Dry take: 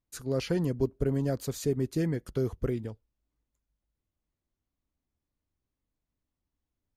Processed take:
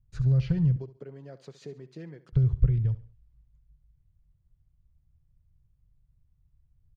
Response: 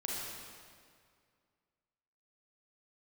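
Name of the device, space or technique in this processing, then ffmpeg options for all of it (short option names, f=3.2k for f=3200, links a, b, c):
jukebox: -filter_complex "[0:a]lowpass=5.1k,lowshelf=f=190:t=q:w=3:g=9.5,acompressor=threshold=-28dB:ratio=5,aemphasis=mode=reproduction:type=bsi,asettb=1/sr,asplit=3[a][b][c];[a]atrim=end=0.764[d];[b]atrim=start=0.76:end=2.33,asetpts=PTS-STARTPTS,afade=t=in:d=0.004:c=qsin,afade=t=out:st=1.566:d=0.004:c=qsin,highpass=f=290:w=0.5412,highpass=f=290:w=1.3066[e];[c]atrim=start=2.326[f];[d][e]acrossfade=d=0.004:c1=hsin:c2=qsin[g];[g][f]acrossfade=d=0.004:c1=qsin:c2=hsin,aecho=1:1:69|138|207:0.158|0.0586|0.0217,adynamicequalizer=threshold=0.00316:dfrequency=1500:dqfactor=0.7:tfrequency=1500:tqfactor=0.7:attack=5:release=100:ratio=0.375:range=3.5:mode=boostabove:tftype=highshelf,volume=-2dB"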